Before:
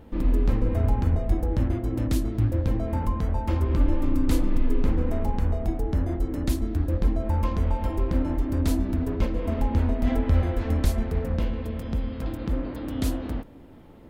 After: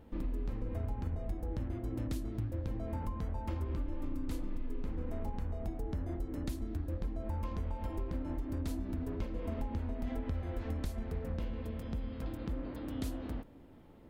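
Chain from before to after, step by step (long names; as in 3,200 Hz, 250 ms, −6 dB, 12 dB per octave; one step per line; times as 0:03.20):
downward compressor, threshold −24 dBFS, peak gain reduction 9.5 dB
level −8.5 dB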